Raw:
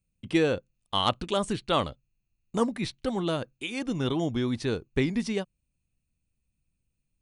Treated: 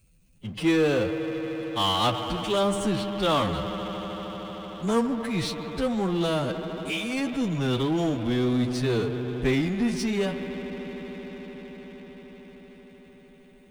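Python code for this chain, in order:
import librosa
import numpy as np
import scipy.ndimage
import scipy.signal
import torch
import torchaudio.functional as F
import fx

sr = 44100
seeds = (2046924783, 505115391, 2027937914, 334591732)

y = fx.rev_spring(x, sr, rt60_s=3.3, pass_ms=(40,), chirp_ms=55, drr_db=8.0)
y = fx.stretch_vocoder(y, sr, factor=1.9)
y = fx.power_curve(y, sr, exponent=0.7)
y = y * librosa.db_to_amplitude(-1.5)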